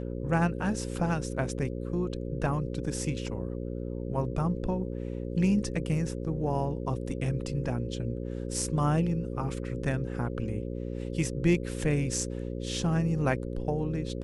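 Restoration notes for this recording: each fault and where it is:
mains buzz 60 Hz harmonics 9 −35 dBFS

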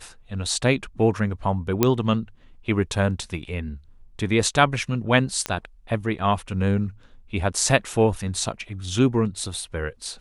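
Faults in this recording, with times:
0:01.83: click −3 dBFS
0:05.46: click −9 dBFS

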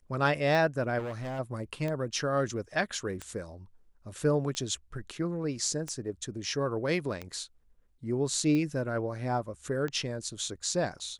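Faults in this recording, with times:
scratch tick 45 rpm
0:00.98–0:01.40: clipping −33 dBFS

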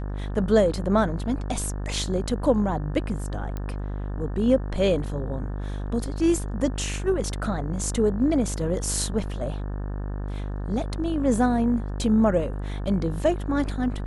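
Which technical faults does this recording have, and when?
mains buzz 50 Hz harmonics 36 −30 dBFS
0:03.57: click −19 dBFS

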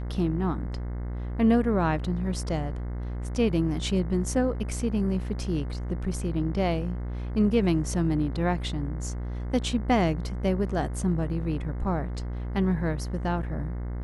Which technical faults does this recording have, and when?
mains buzz 60 Hz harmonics 36 −32 dBFS

